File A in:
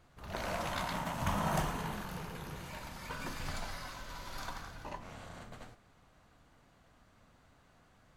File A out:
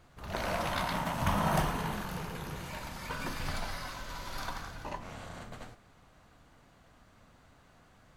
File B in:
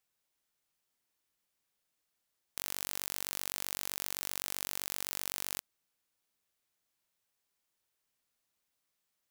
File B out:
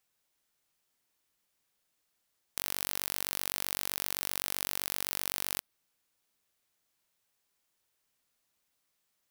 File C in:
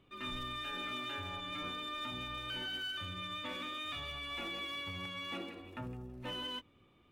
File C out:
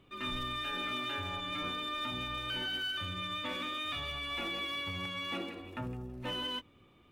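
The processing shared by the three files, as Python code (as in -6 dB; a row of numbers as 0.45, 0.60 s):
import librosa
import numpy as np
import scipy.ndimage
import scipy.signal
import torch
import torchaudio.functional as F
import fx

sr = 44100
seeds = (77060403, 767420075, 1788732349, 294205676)

y = fx.dynamic_eq(x, sr, hz=7100.0, q=3.5, threshold_db=-59.0, ratio=4.0, max_db=-6)
y = y * librosa.db_to_amplitude(4.0)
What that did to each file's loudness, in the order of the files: +4.0, +3.5, +4.0 LU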